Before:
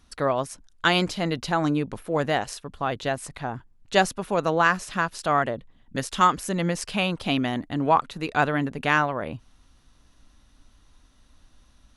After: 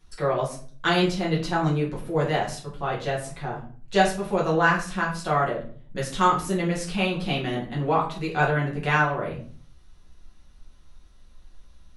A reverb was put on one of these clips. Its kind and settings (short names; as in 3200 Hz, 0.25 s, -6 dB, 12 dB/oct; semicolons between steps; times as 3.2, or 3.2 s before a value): shoebox room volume 39 m³, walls mixed, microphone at 1 m; gain -7 dB